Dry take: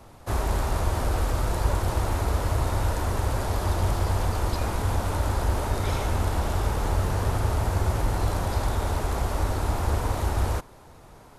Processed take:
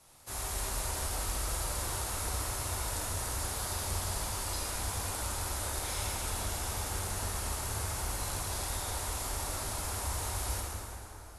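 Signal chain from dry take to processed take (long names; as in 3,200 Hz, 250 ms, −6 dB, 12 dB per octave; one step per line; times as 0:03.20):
Butterworth low-pass 12,000 Hz 72 dB per octave
first-order pre-emphasis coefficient 0.9
dense smooth reverb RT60 3.3 s, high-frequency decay 0.6×, DRR −5 dB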